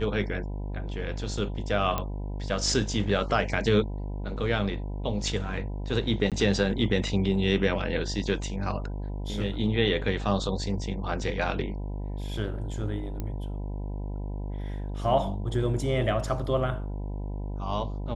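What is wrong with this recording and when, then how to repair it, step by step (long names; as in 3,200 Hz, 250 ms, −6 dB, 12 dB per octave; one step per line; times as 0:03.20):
mains buzz 50 Hz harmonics 20 −33 dBFS
0:01.98: click −14 dBFS
0:06.30–0:06.32: drop-out 17 ms
0:13.20: click −20 dBFS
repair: click removal
hum removal 50 Hz, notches 20
repair the gap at 0:06.30, 17 ms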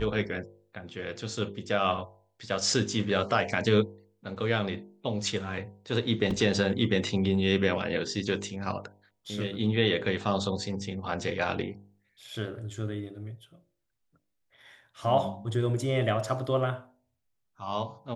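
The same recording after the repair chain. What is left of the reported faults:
none of them is left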